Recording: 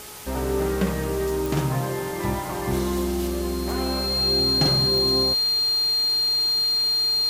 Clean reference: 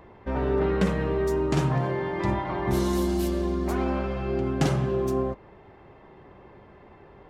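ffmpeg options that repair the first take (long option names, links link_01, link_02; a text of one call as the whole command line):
ffmpeg -i in.wav -af "adeclick=threshold=4,bandreject=frequency=423.1:width_type=h:width=4,bandreject=frequency=846.2:width_type=h:width=4,bandreject=frequency=1269.3:width_type=h:width=4,bandreject=frequency=4200:width=30,afwtdn=0.011" out.wav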